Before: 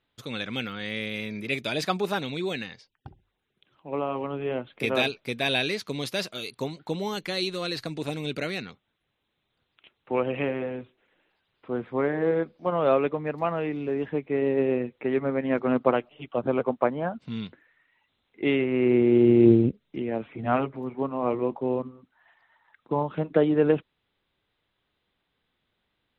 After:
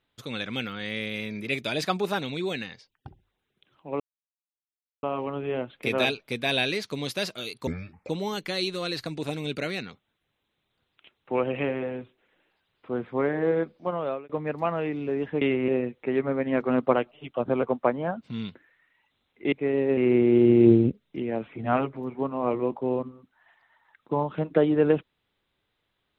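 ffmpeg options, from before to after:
-filter_complex "[0:a]asplit=9[s0][s1][s2][s3][s4][s5][s6][s7][s8];[s0]atrim=end=4,asetpts=PTS-STARTPTS,afade=t=out:st=3.996:d=0.004:c=hsin,apad=pad_dur=1.03[s9];[s1]atrim=start=4:end=6.644,asetpts=PTS-STARTPTS,afade=t=in:d=0.004:c=hsin[s10];[s2]atrim=start=6.64:end=6.89,asetpts=PTS-STARTPTS,asetrate=26019,aresample=44100,atrim=end_sample=18686,asetpts=PTS-STARTPTS[s11];[s3]atrim=start=6.886:end=13.09,asetpts=PTS-STARTPTS,afade=t=out:st=5.674:d=0.53[s12];[s4]atrim=start=13.09:end=14.212,asetpts=PTS-STARTPTS,afade=t=in:d=0.004:c=hsin[s13];[s5]atrim=start=18.498:end=18.772[s14];[s6]atrim=start=14.658:end=18.502[s15];[s7]atrim=start=14.208:end=14.662[s16];[s8]atrim=start=18.768[s17];[s9][s10]concat=n=2:v=0:a=1[s18];[s18][s11]acrossfade=d=0.004:c1=hsin:c2=hsin[s19];[s12][s13]concat=n=2:v=0:a=1[s20];[s19][s20]acrossfade=d=0.004:c1=hsin:c2=hsin[s21];[s21][s14]acrossfade=d=0.004:c1=hsin:c2=hsin[s22];[s22][s15]acrossfade=d=0.004:c1=hsin:c2=hsin[s23];[s23][s16]acrossfade=d=0.004:c1=hsin:c2=hsin[s24];[s24][s17]acrossfade=d=0.004:c1=hsin:c2=hsin"

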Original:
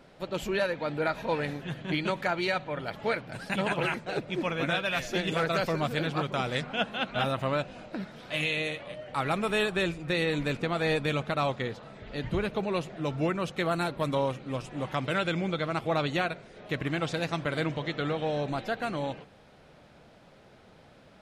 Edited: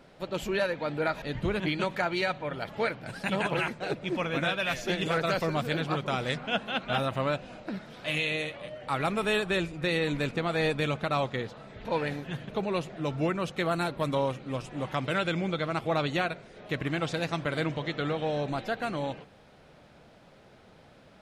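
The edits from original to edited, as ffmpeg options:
-filter_complex "[0:a]asplit=5[s0][s1][s2][s3][s4];[s0]atrim=end=1.222[s5];[s1]atrim=start=12.108:end=12.492[s6];[s2]atrim=start=1.858:end=12.112[s7];[s3]atrim=start=1.218:end=1.862[s8];[s4]atrim=start=12.488[s9];[s5][s6]acrossfade=d=0.004:c1=hsin:c2=hsin[s10];[s10][s7]acrossfade=d=0.004:c1=hsin:c2=hsin[s11];[s11][s8]acrossfade=d=0.004:c1=hsin:c2=hsin[s12];[s12][s9]acrossfade=d=0.004:c1=hsin:c2=hsin"

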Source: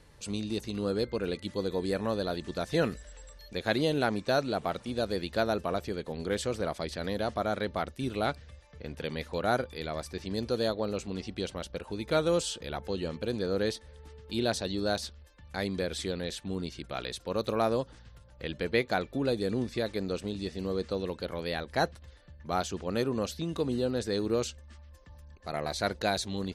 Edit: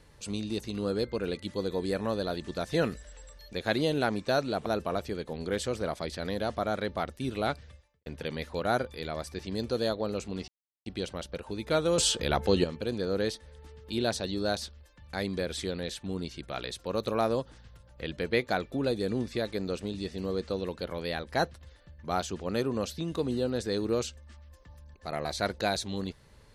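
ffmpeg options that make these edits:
-filter_complex "[0:a]asplit=6[s0][s1][s2][s3][s4][s5];[s0]atrim=end=4.662[s6];[s1]atrim=start=5.448:end=8.85,asetpts=PTS-STARTPTS,afade=t=out:st=3.032:d=0.37:c=qua[s7];[s2]atrim=start=8.85:end=11.27,asetpts=PTS-STARTPTS,afade=t=in:d=0.004:c=hsin,afade=t=out:st=2.416:d=0.004:c=hsin,apad=pad_dur=0.38[s8];[s3]atrim=start=11.27:end=12.392,asetpts=PTS-STARTPTS,afade=t=in:d=0.004:c=hsin[s9];[s4]atrim=start=12.388:end=13.052,asetpts=PTS-STARTPTS,volume=2.82[s10];[s5]atrim=start=13.048[s11];[s7][s8][s9]concat=n=3:v=0:a=1[s12];[s6][s12]acrossfade=d=0.004:c1=hsin:c2=hsin[s13];[s13][s10]acrossfade=d=0.004:c1=hsin:c2=hsin[s14];[s14][s11]acrossfade=d=0.004:c1=hsin:c2=hsin"

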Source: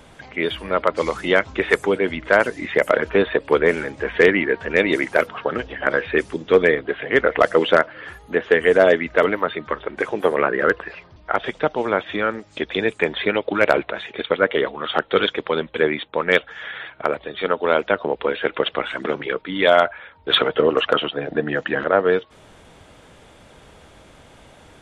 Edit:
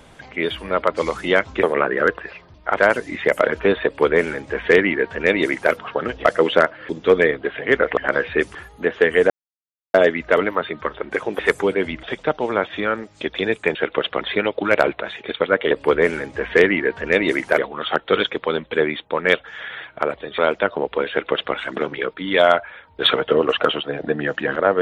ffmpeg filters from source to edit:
-filter_complex "[0:a]asplit=15[s0][s1][s2][s3][s4][s5][s6][s7][s8][s9][s10][s11][s12][s13][s14];[s0]atrim=end=1.632[s15];[s1]atrim=start=10.248:end=11.392[s16];[s2]atrim=start=2.268:end=5.752[s17];[s3]atrim=start=7.408:end=8.052[s18];[s4]atrim=start=6.328:end=7.412[s19];[s5]atrim=start=5.748:end=6.332[s20];[s6]atrim=start=8.048:end=8.8,asetpts=PTS-STARTPTS,afade=t=out:st=0.748:d=0.004:c=hsin,apad=pad_dur=0.64[s21];[s7]atrim=start=8.8:end=10.252,asetpts=PTS-STARTPTS,afade=t=in:d=0.004:c=hsin[s22];[s8]atrim=start=1.628:end=2.272[s23];[s9]atrim=start=11.388:end=13.112[s24];[s10]atrim=start=18.368:end=18.832[s25];[s11]atrim=start=13.108:end=14.612[s26];[s12]atrim=start=3.348:end=5.222[s27];[s13]atrim=start=14.608:end=17.412[s28];[s14]atrim=start=17.658[s29];[s15][s16]acrossfade=d=0.004:c1=hsin:c2=hsin[s30];[s30][s17]acrossfade=d=0.004:c1=hsin:c2=hsin[s31];[s31][s18]acrossfade=d=0.004:c1=hsin:c2=hsin[s32];[s32][s19]acrossfade=d=0.004:c1=hsin:c2=hsin[s33];[s33][s20]acrossfade=d=0.004:c1=hsin:c2=hsin[s34];[s21][s22]concat=n=2:v=0:a=1[s35];[s34][s35]acrossfade=d=0.004:c1=hsin:c2=hsin[s36];[s36][s23]acrossfade=d=0.004:c1=hsin:c2=hsin[s37];[s37][s24]acrossfade=d=0.004:c1=hsin:c2=hsin[s38];[s38][s25]acrossfade=d=0.004:c1=hsin:c2=hsin[s39];[s39][s26]acrossfade=d=0.004:c1=hsin:c2=hsin[s40];[s40][s27]acrossfade=d=0.004:c1=hsin:c2=hsin[s41];[s41][s28]acrossfade=d=0.004:c1=hsin:c2=hsin[s42];[s42][s29]acrossfade=d=0.004:c1=hsin:c2=hsin"

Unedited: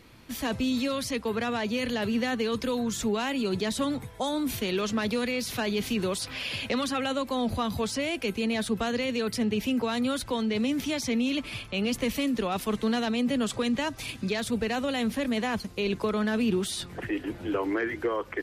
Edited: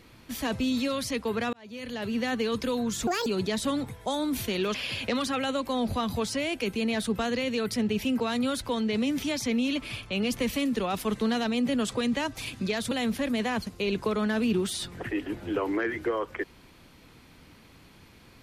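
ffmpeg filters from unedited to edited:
-filter_complex "[0:a]asplit=6[s0][s1][s2][s3][s4][s5];[s0]atrim=end=1.53,asetpts=PTS-STARTPTS,afade=t=out:st=1.526:d=0.004:c=hsin[s6];[s1]atrim=start=1.53:end=3.074,asetpts=PTS-STARTPTS,afade=t=in:d=0.8[s7];[s2]atrim=start=3.07:end=3.4,asetpts=PTS-STARTPTS,asetrate=75411,aresample=44100[s8];[s3]atrim=start=3.396:end=4.882[s9];[s4]atrim=start=6.358:end=14.532[s10];[s5]atrim=start=14.888[s11];[s6][s7]concat=n=2:v=0:a=1[s12];[s12][s8]acrossfade=d=0.004:c1=hsin:c2=hsin[s13];[s13][s9]acrossfade=d=0.004:c1=hsin:c2=hsin[s14];[s14][s10]acrossfade=d=0.004:c1=hsin:c2=hsin[s15];[s15][s11]acrossfade=d=0.004:c1=hsin:c2=hsin"

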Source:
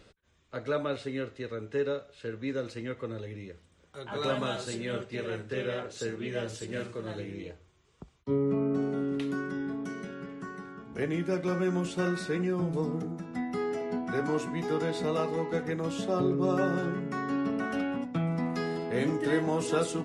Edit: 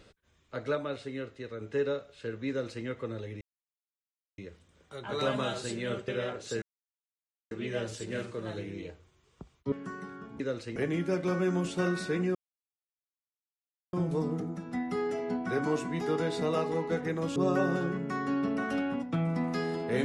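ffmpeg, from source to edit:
-filter_complex "[0:a]asplit=11[s0][s1][s2][s3][s4][s5][s6][s7][s8][s9][s10];[s0]atrim=end=0.752[s11];[s1]atrim=start=0.748:end=1.612,asetpts=PTS-STARTPTS,volume=0.668[s12];[s2]atrim=start=1.608:end=3.41,asetpts=PTS-STARTPTS,afade=t=out:st=1.798:d=0.004:c=hsin,apad=pad_dur=0.97[s13];[s3]atrim=start=3.41:end=5.112,asetpts=PTS-STARTPTS,afade=t=in:d=0.004:c=hsin[s14];[s4]atrim=start=5.578:end=6.12,asetpts=PTS-STARTPTS,afade=t=out:st=0.538:d=0.004:c=hsin,apad=pad_dur=0.89[s15];[s5]atrim=start=6.12:end=8.332,asetpts=PTS-STARTPTS,afade=t=in:d=0.004:c=hsin[s16];[s6]atrim=start=10.278:end=10.962[s17];[s7]atrim=start=2.488:end=2.852[s18];[s8]atrim=start=10.958:end=12.55,asetpts=PTS-STARTPTS,afade=t=out:st=1.588:d=0.004:c=hsin,apad=pad_dur=1.58[s19];[s9]atrim=start=12.55:end=15.982,asetpts=PTS-STARTPTS,afade=t=in:d=0.004:c=hsin[s20];[s10]atrim=start=16.378[s21];[s11][s12]acrossfade=d=0.004:c1=hsin:c2=hsin[s22];[s13][s14]concat=n=2:v=0:a=1[s23];[s22][s23]acrossfade=d=0.004:c1=hsin:c2=hsin[s24];[s15][s16]concat=n=2:v=0:a=1[s25];[s24][s25]acrossfade=d=0.004:c1=hsin:c2=hsin[s26];[s26][s17]acrossfade=d=0.004:c1=hsin:c2=hsin[s27];[s27][s18]acrossfade=d=0.004:c1=hsin:c2=hsin[s28];[s19][s20]concat=n=2:v=0:a=1[s29];[s28][s29]acrossfade=d=0.004:c1=hsin:c2=hsin[s30];[s30][s21]acrossfade=d=0.004:c1=hsin:c2=hsin"

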